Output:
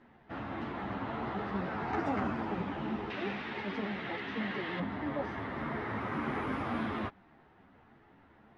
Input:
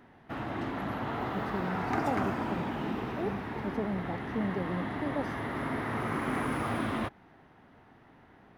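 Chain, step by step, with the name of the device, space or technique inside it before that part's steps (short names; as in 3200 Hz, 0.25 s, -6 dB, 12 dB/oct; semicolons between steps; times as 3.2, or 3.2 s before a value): string-machine ensemble chorus (ensemble effect; LPF 4500 Hz 12 dB/oct); 3.1–4.8 weighting filter D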